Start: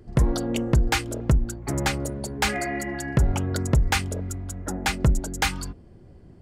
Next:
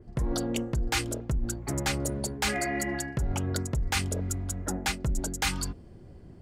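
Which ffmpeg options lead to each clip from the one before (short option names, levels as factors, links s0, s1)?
-af "areverse,acompressor=threshold=0.0501:ratio=6,areverse,adynamicequalizer=threshold=0.00562:dfrequency=3100:dqfactor=0.7:tfrequency=3100:tqfactor=0.7:attack=5:release=100:ratio=0.375:range=2:mode=boostabove:tftype=highshelf"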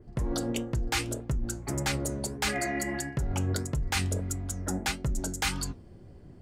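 -af "flanger=delay=6.7:depth=4.5:regen=78:speed=1.6:shape=sinusoidal,volume=1.5"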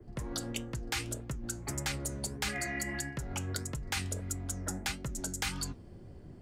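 -filter_complex "[0:a]acrossover=split=88|190|1200[s0][s1][s2][s3];[s0]acompressor=threshold=0.00708:ratio=4[s4];[s1]acompressor=threshold=0.00631:ratio=4[s5];[s2]acompressor=threshold=0.00631:ratio=4[s6];[s3]acompressor=threshold=0.0224:ratio=4[s7];[s4][s5][s6][s7]amix=inputs=4:normalize=0"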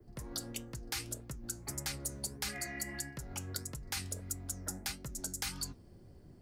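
-af "aexciter=amount=2.4:drive=3.1:freq=4300,volume=0.473"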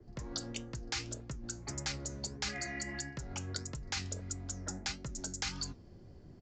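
-af "aresample=16000,aresample=44100,volume=1.26"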